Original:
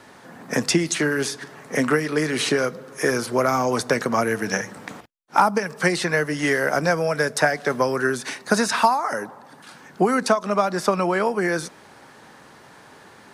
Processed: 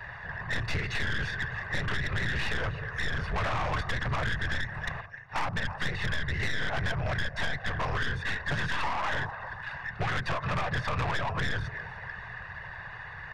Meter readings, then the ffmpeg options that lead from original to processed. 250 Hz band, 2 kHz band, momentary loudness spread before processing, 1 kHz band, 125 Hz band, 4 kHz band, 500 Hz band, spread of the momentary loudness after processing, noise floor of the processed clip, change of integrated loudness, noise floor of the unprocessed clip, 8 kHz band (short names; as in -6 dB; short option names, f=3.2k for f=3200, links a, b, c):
-16.0 dB, -5.0 dB, 8 LU, -11.0 dB, -1.0 dB, -6.0 dB, -17.0 dB, 9 LU, -43 dBFS, -10.0 dB, -48 dBFS, -20.0 dB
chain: -filter_complex "[0:a]aecho=1:1:1.1:0.9,asplit=2[a][b];[b]aecho=0:1:300|600|900:0.0708|0.0297|0.0125[c];[a][c]amix=inputs=2:normalize=0,afftfilt=real='hypot(re,im)*cos(2*PI*random(0))':imag='hypot(re,im)*sin(2*PI*random(1))':win_size=512:overlap=0.75,asplit=2[d][e];[e]aeval=exprs='(mod(13.3*val(0)+1,2)-1)/13.3':c=same,volume=-10.5dB[f];[d][f]amix=inputs=2:normalize=0,firequalizer=gain_entry='entry(120,0);entry(260,-27);entry(440,1);entry(830,-4);entry(1500,9);entry(7700,-19)':delay=0.05:min_phase=1,aresample=22050,aresample=44100,aeval=exprs='0.668*(cos(1*acos(clip(val(0)/0.668,-1,1)))-cos(1*PI/2))+0.0596*(cos(8*acos(clip(val(0)/0.668,-1,1)))-cos(8*PI/2))':c=same,bass=f=250:g=9,treble=f=4k:g=-9,bandreject=f=3.1k:w=11,acrossover=split=1100|5500[g][h][i];[g]acompressor=threshold=-25dB:ratio=4[j];[h]acompressor=threshold=-31dB:ratio=4[k];[i]acompressor=threshold=-60dB:ratio=4[l];[j][k][l]amix=inputs=3:normalize=0,asoftclip=type=tanh:threshold=-28.5dB,volume=3.5dB"